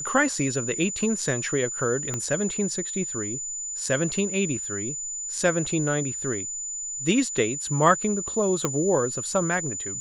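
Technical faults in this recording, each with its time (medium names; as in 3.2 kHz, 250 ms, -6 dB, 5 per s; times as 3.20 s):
whine 7 kHz -30 dBFS
2.14 s: pop -14 dBFS
8.65 s: pop -9 dBFS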